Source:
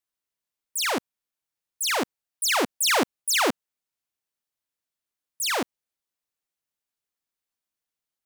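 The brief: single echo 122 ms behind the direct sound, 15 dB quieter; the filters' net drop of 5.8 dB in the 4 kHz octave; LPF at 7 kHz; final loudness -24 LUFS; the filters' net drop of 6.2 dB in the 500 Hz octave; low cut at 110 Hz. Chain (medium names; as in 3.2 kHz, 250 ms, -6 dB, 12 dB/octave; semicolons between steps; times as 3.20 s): high-pass 110 Hz; low-pass 7 kHz; peaking EQ 500 Hz -8 dB; peaking EQ 4 kHz -7 dB; delay 122 ms -15 dB; trim +5 dB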